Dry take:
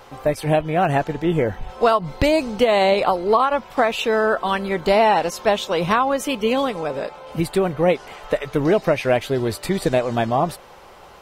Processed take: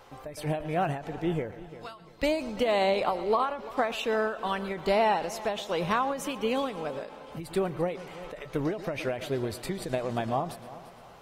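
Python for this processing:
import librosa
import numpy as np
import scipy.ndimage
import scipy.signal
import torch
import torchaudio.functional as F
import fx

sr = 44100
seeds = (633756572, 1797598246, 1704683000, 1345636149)

y = fx.tone_stack(x, sr, knobs='5-5-5', at=(1.51, 2.23))
y = fx.echo_heads(y, sr, ms=114, heads='first and third', feedback_pct=50, wet_db=-18.5)
y = fx.end_taper(y, sr, db_per_s=110.0)
y = y * 10.0 ** (-8.5 / 20.0)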